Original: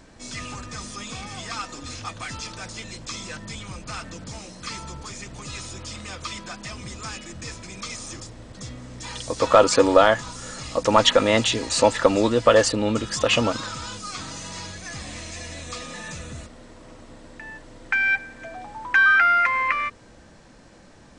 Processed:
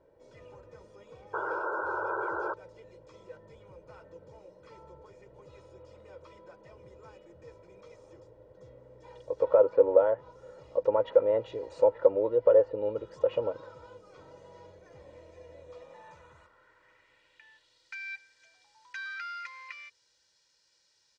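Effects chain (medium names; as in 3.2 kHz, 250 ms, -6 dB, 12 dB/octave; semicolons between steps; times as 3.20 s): band-pass sweep 540 Hz -> 4.9 kHz, 15.64–17.92 s; bass shelf 180 Hz +12 dB; low-pass that closes with the level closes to 2 kHz, closed at -16 dBFS; painted sound noise, 1.33–2.54 s, 320–1600 Hz -27 dBFS; comb 2.1 ms, depth 71%; trim -8 dB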